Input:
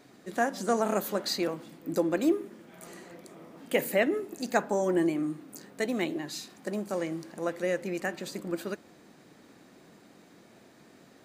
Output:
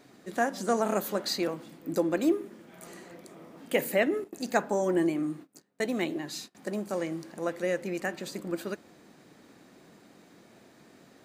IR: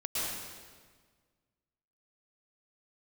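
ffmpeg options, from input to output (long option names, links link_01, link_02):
-filter_complex "[0:a]asettb=1/sr,asplit=3[link_01][link_02][link_03];[link_01]atrim=end=4.244[link_04];[link_02]atrim=start=4.24:end=6.55,asetpts=PTS-STARTPTS,afade=type=in:duration=0.004:curve=qsin,afade=type=out:start_time=2.306:duration=0.004:curve=qsin,agate=range=-25dB:threshold=-43dB:ratio=16:detection=peak[link_05];[link_03]atrim=start=6.546[link_06];[link_04][link_05]acrossfade=duration=0.004:curve1=hsin:curve2=qsin[link_07];[link_07][link_06]acrossfade=duration=0.004:curve1=qsin:curve2=hsin"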